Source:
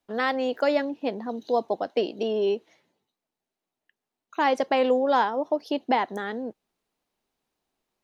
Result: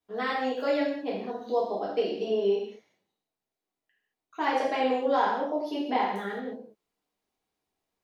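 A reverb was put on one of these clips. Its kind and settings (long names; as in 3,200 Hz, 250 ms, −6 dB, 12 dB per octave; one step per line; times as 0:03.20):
reverb whose tail is shaped and stops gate 250 ms falling, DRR −7.5 dB
level −11 dB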